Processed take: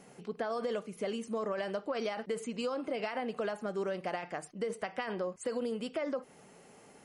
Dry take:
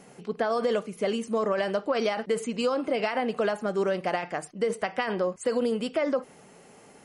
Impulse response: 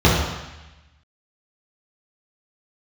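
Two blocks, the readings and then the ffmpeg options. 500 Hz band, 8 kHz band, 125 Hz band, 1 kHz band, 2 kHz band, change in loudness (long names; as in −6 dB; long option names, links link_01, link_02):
−8.5 dB, −7.0 dB, −7.5 dB, −8.5 dB, −8.5 dB, −8.5 dB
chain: -af "acompressor=threshold=-34dB:ratio=1.5,volume=-4.5dB"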